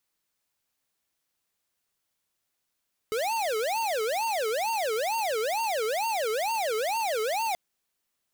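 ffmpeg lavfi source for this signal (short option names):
-f lavfi -i "aevalsrc='0.0398*(2*lt(mod((673*t-245/(2*PI*2.2)*sin(2*PI*2.2*t)),1),0.5)-1)':d=4.43:s=44100"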